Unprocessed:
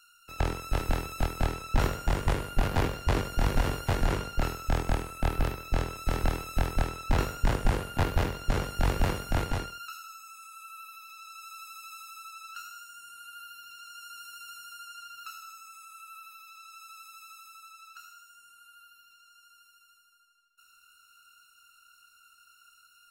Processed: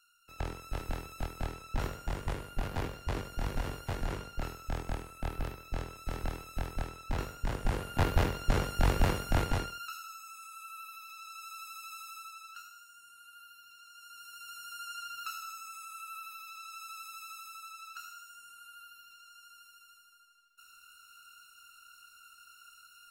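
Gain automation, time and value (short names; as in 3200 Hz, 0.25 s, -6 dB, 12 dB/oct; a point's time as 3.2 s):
7.47 s -8.5 dB
8.08 s -0.5 dB
12.15 s -0.5 dB
12.74 s -8 dB
13.94 s -8 dB
14.91 s +3 dB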